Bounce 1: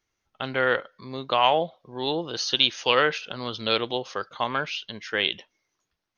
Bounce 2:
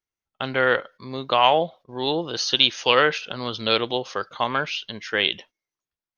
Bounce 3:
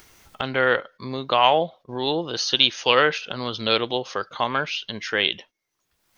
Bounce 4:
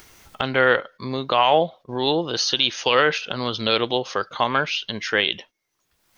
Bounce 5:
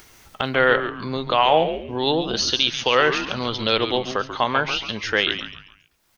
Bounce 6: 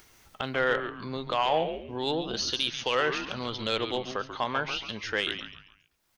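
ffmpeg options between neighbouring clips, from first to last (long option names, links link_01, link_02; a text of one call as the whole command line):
ffmpeg -i in.wav -af "agate=range=-17dB:threshold=-47dB:ratio=16:detection=peak,volume=3dB" out.wav
ffmpeg -i in.wav -af "acompressor=mode=upward:threshold=-24dB:ratio=2.5" out.wav
ffmpeg -i in.wav -af "alimiter=level_in=7.5dB:limit=-1dB:release=50:level=0:latency=1,volume=-4.5dB" out.wav
ffmpeg -i in.wav -filter_complex "[0:a]asplit=5[link_01][link_02][link_03][link_04][link_05];[link_02]adelay=138,afreqshift=-120,volume=-10dB[link_06];[link_03]adelay=276,afreqshift=-240,volume=-18.9dB[link_07];[link_04]adelay=414,afreqshift=-360,volume=-27.7dB[link_08];[link_05]adelay=552,afreqshift=-480,volume=-36.6dB[link_09];[link_01][link_06][link_07][link_08][link_09]amix=inputs=5:normalize=0" out.wav
ffmpeg -i in.wav -af "asoftclip=type=tanh:threshold=-5.5dB,volume=-8dB" out.wav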